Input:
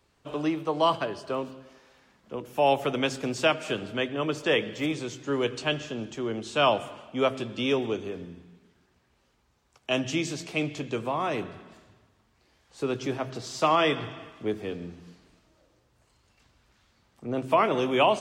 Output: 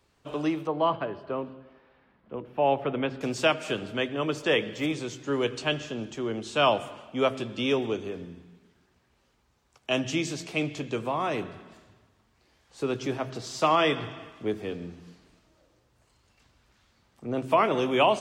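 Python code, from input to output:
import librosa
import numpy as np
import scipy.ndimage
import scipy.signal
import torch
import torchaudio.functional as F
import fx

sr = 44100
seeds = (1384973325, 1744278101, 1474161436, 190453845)

y = fx.air_absorb(x, sr, metres=420.0, at=(0.67, 3.21))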